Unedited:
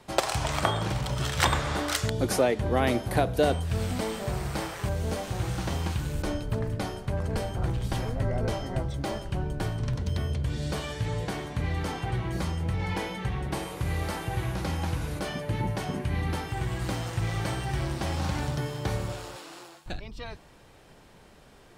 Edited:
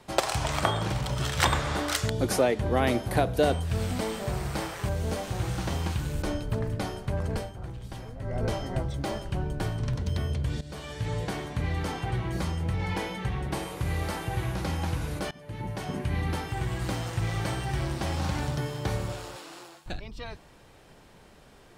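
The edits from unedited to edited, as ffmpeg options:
-filter_complex "[0:a]asplit=5[a][b][c][d][e];[a]atrim=end=7.53,asetpts=PTS-STARTPTS,afade=t=out:st=7.31:d=0.22:silence=0.316228[f];[b]atrim=start=7.53:end=8.21,asetpts=PTS-STARTPTS,volume=-10dB[g];[c]atrim=start=8.21:end=10.61,asetpts=PTS-STARTPTS,afade=t=in:d=0.22:silence=0.316228,afade=t=out:st=2.396:d=0.004:c=hsin:silence=0.16788[h];[d]atrim=start=10.61:end=15.31,asetpts=PTS-STARTPTS,afade=t=in:d=0.52:silence=0.16788,afade=t=out:st=4.696:d=0.004:c=hsin:silence=0.0944061[i];[e]atrim=start=15.31,asetpts=PTS-STARTPTS,afade=t=in:d=0.72:silence=0.0944061[j];[f][g][h][i][j]concat=n=5:v=0:a=1"

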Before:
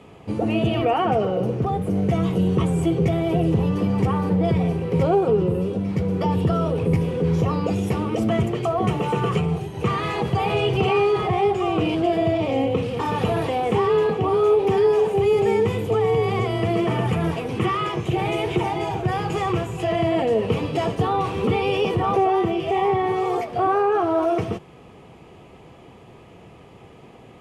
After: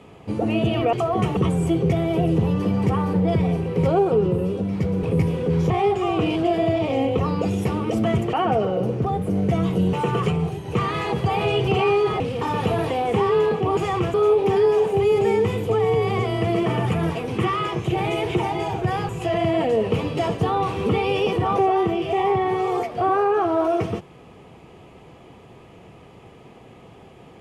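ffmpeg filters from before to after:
-filter_complex "[0:a]asplit=12[a][b][c][d][e][f][g][h][i][j][k][l];[a]atrim=end=0.932[m];[b]atrim=start=8.578:end=9.022[n];[c]atrim=start=2.528:end=6.192[o];[d]atrim=start=6.768:end=7.442[p];[e]atrim=start=11.288:end=12.782[q];[f]atrim=start=7.438:end=8.582[r];[g]atrim=start=0.928:end=2.532[s];[h]atrim=start=9.018:end=11.292[t];[i]atrim=start=12.778:end=14.352[u];[j]atrim=start=19.298:end=19.672[v];[k]atrim=start=14.348:end=19.302[w];[l]atrim=start=19.668[x];[m][n]acrossfade=d=0.004:c1=hsin:c2=hsin[y];[y][o]acrossfade=d=0.004:c1=hsin:c2=hsin[z];[z][p]acrossfade=d=0.004:c1=hsin:c2=hsin[aa];[aa][q]acrossfade=d=0.004:c1=hsin:c2=hsin[ab];[ab][r]acrossfade=d=0.004:c1=hsin:c2=hsin[ac];[ac][s]acrossfade=d=0.004:c1=hsin:c2=hsin[ad];[ad][t]acrossfade=d=0.004:c1=hsin:c2=hsin[ae];[ae][u]acrossfade=d=0.004:c1=hsin:c2=hsin[af];[af][v]acrossfade=d=0.004:c1=hsin:c2=hsin[ag];[ag][w]acrossfade=d=0.004:c1=hsin:c2=hsin[ah];[ah][x]acrossfade=d=0.004:c1=hsin:c2=hsin"

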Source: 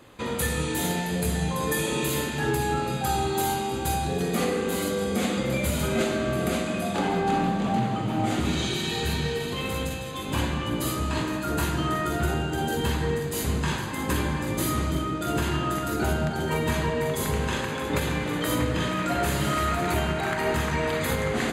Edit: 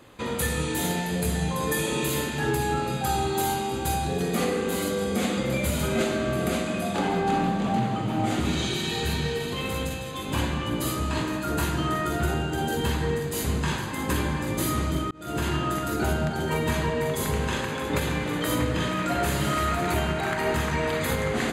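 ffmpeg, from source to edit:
-filter_complex "[0:a]asplit=2[a][b];[a]atrim=end=15.11,asetpts=PTS-STARTPTS,afade=t=out:st=15.106:d=0.004:c=hsin[c];[b]atrim=start=15.11,asetpts=PTS-STARTPTS,afade=t=in:d=0.35[d];[c][d]concat=n=2:v=0:a=1"

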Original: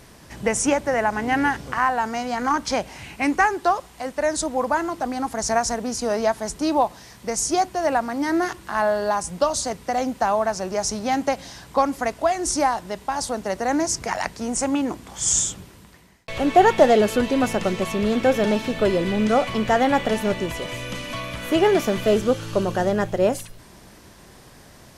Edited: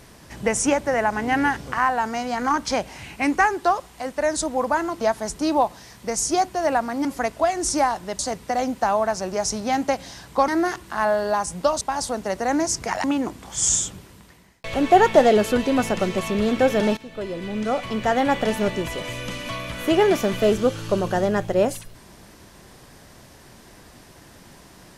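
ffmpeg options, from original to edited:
-filter_complex "[0:a]asplit=8[a][b][c][d][e][f][g][h];[a]atrim=end=5.012[i];[b]atrim=start=6.208:end=8.252[j];[c]atrim=start=11.868:end=13.012[k];[d]atrim=start=9.578:end=11.872[l];[e]atrim=start=8.248:end=9.582[m];[f]atrim=start=13.008:end=14.242[n];[g]atrim=start=14.678:end=18.61,asetpts=PTS-STARTPTS,afade=t=out:st=3.928:d=0.004:c=hsin:silence=0.149624[o];[h]atrim=start=18.61,asetpts=PTS-STARTPTS,afade=t=in:d=1.51:silence=0.149624[p];[i][j]acrossfade=d=0.004:c1=hsin:c2=hsin[q];[q][k]acrossfade=d=0.004:c1=hsin:c2=hsin[r];[r][l]acrossfade=d=0.004:c1=hsin:c2=hsin[s];[s][m]acrossfade=d=0.004:c1=hsin:c2=hsin[t];[t][n]acrossfade=d=0.004:c1=hsin:c2=hsin[u];[o][p]concat=n=2:v=0:a=1[v];[u][v]acrossfade=d=0.004:c1=hsin:c2=hsin"

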